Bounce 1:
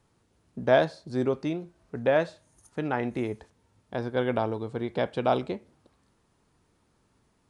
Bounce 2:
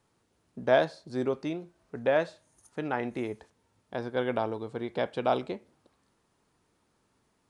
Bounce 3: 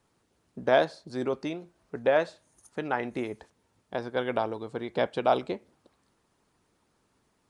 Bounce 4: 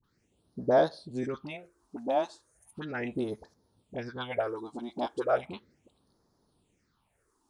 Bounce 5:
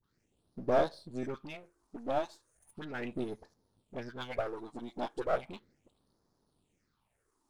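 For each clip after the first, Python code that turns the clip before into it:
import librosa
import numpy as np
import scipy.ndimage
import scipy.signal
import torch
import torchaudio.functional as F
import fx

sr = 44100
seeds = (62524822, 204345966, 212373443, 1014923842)

y1 = fx.low_shelf(x, sr, hz=160.0, db=-8.0)
y1 = y1 * librosa.db_to_amplitude(-1.5)
y2 = fx.hpss(y1, sr, part='percussive', gain_db=6)
y2 = y2 * librosa.db_to_amplitude(-2.5)
y3 = fx.phaser_stages(y2, sr, stages=6, low_hz=120.0, high_hz=2600.0, hz=0.36, feedback_pct=35)
y3 = fx.dispersion(y3, sr, late='highs', ms=40.0, hz=800.0)
y4 = np.where(y3 < 0.0, 10.0 ** (-7.0 / 20.0) * y3, y3)
y4 = y4 * librosa.db_to_amplitude(-2.0)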